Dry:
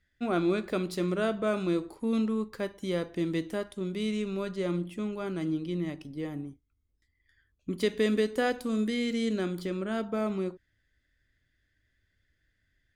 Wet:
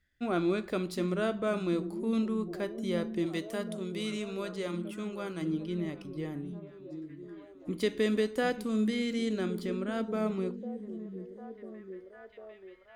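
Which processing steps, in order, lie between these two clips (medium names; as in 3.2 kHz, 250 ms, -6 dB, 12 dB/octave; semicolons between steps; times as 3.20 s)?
3.26–5.42 s: tilt EQ +1.5 dB/octave; repeats whose band climbs or falls 749 ms, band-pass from 190 Hz, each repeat 0.7 oct, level -7 dB; trim -2 dB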